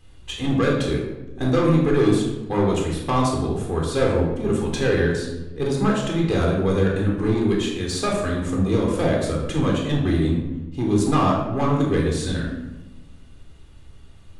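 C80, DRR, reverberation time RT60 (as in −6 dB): 5.0 dB, −1.5 dB, 1.0 s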